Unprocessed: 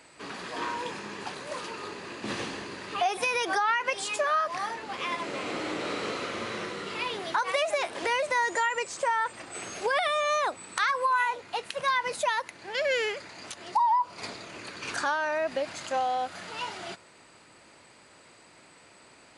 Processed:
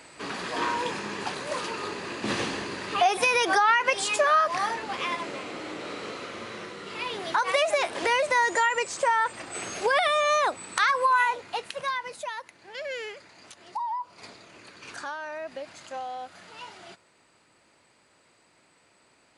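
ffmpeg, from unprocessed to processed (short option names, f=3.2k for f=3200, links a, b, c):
-af "volume=12.5dB,afade=t=out:st=4.76:d=0.73:silence=0.354813,afade=t=in:st=6.8:d=0.72:silence=0.421697,afade=t=out:st=11.24:d=0.88:silence=0.281838"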